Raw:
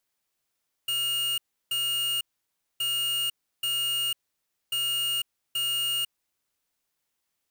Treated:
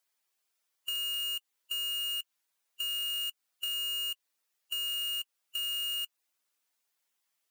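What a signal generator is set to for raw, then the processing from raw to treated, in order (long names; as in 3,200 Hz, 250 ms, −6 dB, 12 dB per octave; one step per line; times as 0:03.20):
beeps in groups square 2,850 Hz, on 0.50 s, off 0.33 s, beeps 2, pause 0.59 s, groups 3, −27.5 dBFS
spectral magnitudes quantised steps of 15 dB
high-pass filter 590 Hz 6 dB per octave
downward compressor 3 to 1, threshold −35 dBFS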